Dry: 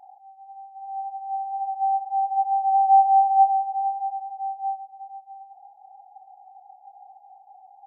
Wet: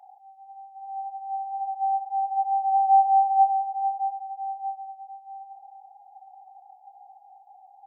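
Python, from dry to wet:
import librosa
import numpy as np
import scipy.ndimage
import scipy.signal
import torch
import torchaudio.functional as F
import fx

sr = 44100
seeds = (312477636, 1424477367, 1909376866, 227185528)

p1 = scipy.signal.sosfilt(scipy.signal.butter(2, 690.0, 'highpass', fs=sr, output='sos'), x)
y = p1 + fx.echo_feedback(p1, sr, ms=857, feedback_pct=36, wet_db=-17.5, dry=0)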